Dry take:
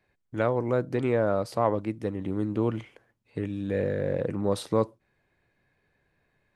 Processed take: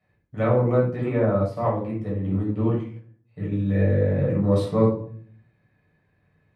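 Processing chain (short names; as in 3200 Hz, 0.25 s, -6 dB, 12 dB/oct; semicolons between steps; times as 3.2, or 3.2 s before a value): HPF 52 Hz; tone controls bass +3 dB, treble -7 dB; shoebox room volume 590 m³, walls furnished, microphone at 6.4 m; 0.78–3.52 upward expander 1.5:1, over -30 dBFS; gain -6.5 dB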